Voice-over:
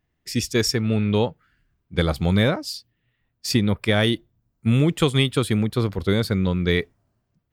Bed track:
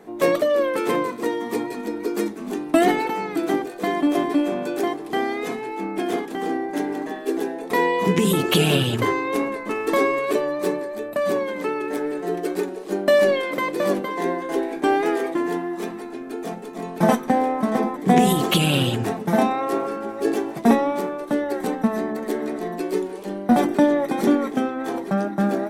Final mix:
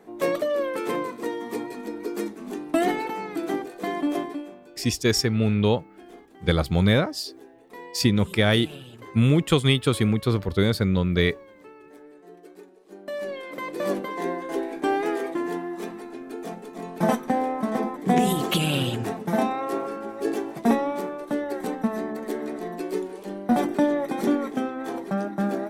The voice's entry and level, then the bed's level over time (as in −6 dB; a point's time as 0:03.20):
4.50 s, −0.5 dB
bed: 0:04.16 −5.5 dB
0:04.61 −22 dB
0:12.80 −22 dB
0:13.90 −4.5 dB